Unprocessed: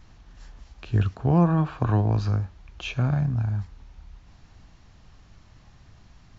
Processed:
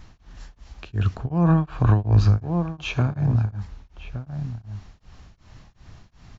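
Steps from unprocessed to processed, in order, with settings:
slap from a distant wall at 200 metres, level −10 dB
brickwall limiter −16 dBFS, peak gain reduction 8 dB
0:01.13–0:02.38: low-shelf EQ 92 Hz +10 dB
tremolo along a rectified sine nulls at 2.7 Hz
level +6 dB

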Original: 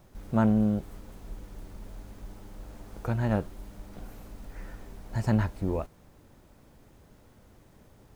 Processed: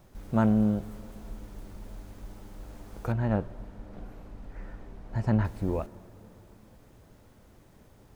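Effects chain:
0:03.12–0:05.45: low-pass filter 1,900 Hz 6 dB per octave
convolution reverb RT60 3.9 s, pre-delay 23 ms, DRR 19 dB

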